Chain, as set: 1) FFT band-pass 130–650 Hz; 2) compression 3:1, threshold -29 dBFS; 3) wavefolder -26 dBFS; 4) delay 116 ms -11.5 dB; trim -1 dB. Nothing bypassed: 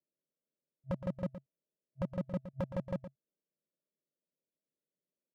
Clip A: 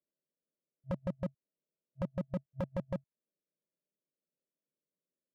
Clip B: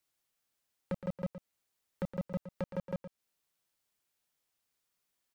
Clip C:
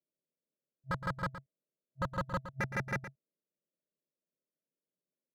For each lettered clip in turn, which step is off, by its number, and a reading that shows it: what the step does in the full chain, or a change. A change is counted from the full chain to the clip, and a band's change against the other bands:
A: 4, momentary loudness spread change -9 LU; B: 1, 2 kHz band +2.0 dB; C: 2, mean gain reduction 8.5 dB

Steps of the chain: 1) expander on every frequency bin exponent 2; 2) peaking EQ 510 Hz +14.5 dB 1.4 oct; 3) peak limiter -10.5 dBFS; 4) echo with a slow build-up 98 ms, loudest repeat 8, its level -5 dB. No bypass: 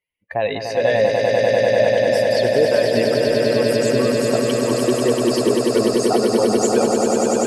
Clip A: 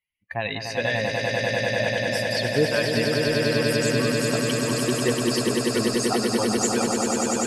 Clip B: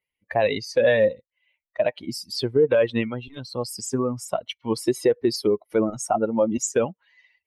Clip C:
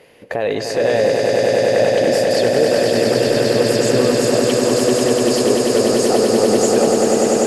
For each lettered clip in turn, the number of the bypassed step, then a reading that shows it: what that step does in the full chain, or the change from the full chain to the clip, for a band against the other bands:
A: 2, 500 Hz band -9.0 dB; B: 4, echo-to-direct 6.5 dB to none; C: 1, 8 kHz band +3.0 dB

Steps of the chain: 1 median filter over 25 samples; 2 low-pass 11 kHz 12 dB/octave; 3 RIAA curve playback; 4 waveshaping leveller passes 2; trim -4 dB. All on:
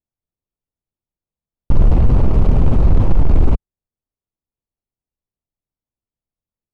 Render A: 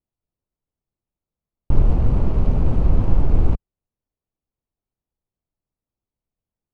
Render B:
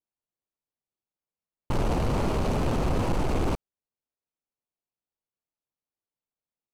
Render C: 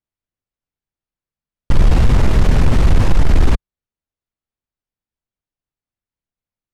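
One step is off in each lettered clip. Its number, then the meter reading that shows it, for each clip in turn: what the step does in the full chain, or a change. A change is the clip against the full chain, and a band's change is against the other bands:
4, crest factor change +4.5 dB; 3, 125 Hz band -10.5 dB; 1, 1 kHz band +3.5 dB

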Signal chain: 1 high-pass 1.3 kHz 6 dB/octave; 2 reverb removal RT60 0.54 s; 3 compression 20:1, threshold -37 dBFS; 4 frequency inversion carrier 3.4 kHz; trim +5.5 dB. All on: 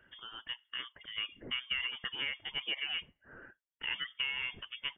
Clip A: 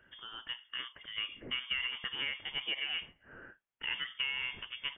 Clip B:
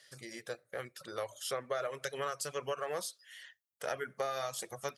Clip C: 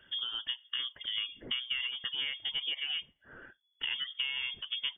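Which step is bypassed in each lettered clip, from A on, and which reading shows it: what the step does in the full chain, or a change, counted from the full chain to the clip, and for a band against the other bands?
2, momentary loudness spread change +2 LU; 4, 2 kHz band -16.0 dB; 1, 1 kHz band -2.0 dB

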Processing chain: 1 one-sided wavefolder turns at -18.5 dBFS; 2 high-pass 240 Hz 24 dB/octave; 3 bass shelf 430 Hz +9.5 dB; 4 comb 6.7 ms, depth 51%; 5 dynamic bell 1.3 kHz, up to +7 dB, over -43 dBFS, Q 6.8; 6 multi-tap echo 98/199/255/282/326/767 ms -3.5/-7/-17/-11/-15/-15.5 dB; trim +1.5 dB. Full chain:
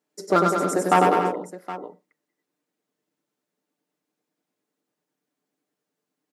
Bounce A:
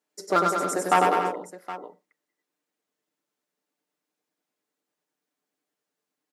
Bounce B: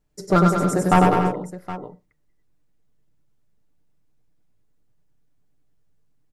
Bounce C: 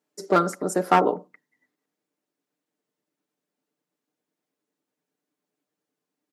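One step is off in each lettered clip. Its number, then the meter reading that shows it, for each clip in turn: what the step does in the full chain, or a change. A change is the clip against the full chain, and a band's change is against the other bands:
3, 125 Hz band -7.0 dB; 2, 125 Hz band +11.0 dB; 6, echo-to-direct -1.0 dB to none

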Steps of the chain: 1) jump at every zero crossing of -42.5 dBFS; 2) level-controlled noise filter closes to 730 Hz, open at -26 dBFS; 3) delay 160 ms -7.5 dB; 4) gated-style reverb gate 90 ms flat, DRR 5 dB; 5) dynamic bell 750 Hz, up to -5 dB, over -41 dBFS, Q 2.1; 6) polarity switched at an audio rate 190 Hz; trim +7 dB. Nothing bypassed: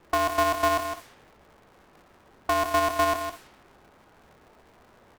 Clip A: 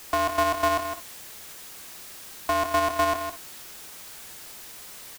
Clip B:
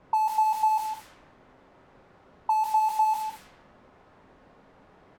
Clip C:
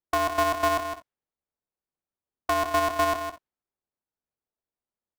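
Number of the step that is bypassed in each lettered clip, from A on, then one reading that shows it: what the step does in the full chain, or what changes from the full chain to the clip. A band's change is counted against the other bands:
2, 8 kHz band +2.5 dB; 6, 1 kHz band +15.0 dB; 1, distortion -20 dB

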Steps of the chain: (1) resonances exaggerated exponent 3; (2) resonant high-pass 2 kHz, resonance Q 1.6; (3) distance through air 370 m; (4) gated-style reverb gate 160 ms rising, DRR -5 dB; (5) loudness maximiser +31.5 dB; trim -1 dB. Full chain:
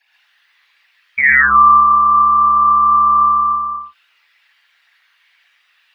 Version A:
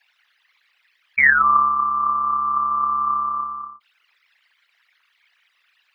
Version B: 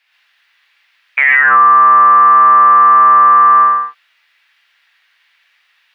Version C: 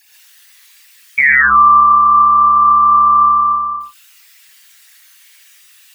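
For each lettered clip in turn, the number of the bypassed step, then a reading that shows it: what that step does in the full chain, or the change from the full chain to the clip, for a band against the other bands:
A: 4, momentary loudness spread change +1 LU; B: 1, crest factor change -4.0 dB; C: 3, crest factor change -1.5 dB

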